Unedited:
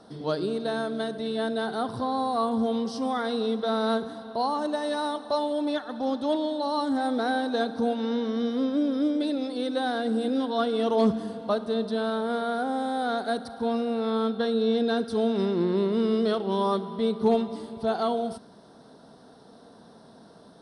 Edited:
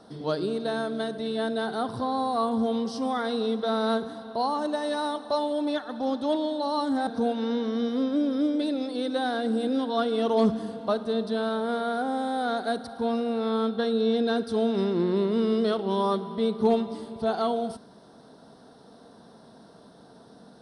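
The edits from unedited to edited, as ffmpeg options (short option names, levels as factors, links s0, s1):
-filter_complex "[0:a]asplit=2[s0][s1];[s0]atrim=end=7.072[s2];[s1]atrim=start=7.678[s3];[s2][s3]acrossfade=d=0.004:c1=hsin:c2=hsin"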